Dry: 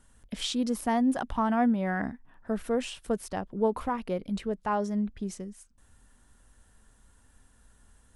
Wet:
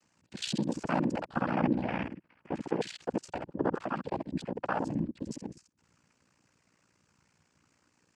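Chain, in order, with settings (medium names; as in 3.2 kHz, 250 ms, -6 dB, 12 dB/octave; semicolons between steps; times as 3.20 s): time reversed locally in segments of 52 ms; noise-vocoded speech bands 8; ring modulator 30 Hz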